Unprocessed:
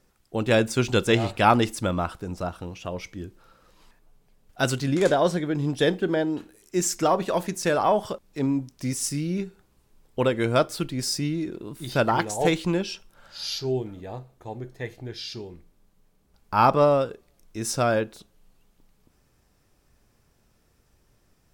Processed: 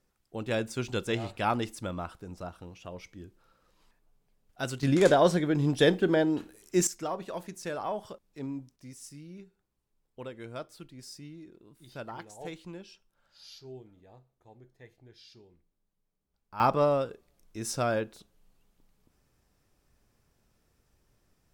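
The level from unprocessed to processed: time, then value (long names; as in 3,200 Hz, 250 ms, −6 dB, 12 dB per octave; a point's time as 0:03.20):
−10 dB
from 0:04.83 −0.5 dB
from 0:06.87 −12.5 dB
from 0:08.76 −19 dB
from 0:16.60 −6 dB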